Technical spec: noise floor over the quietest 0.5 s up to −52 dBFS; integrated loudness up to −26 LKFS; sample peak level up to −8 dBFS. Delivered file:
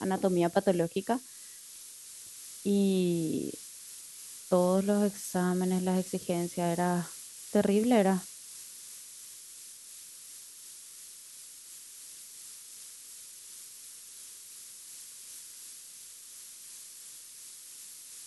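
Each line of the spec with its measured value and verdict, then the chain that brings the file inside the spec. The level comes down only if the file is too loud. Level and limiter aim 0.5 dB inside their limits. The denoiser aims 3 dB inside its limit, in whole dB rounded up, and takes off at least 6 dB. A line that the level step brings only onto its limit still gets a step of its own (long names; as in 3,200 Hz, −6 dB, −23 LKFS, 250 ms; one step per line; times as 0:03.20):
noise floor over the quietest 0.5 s −49 dBFS: out of spec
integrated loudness −30.0 LKFS: in spec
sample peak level −12.5 dBFS: in spec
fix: broadband denoise 6 dB, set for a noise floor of −49 dBFS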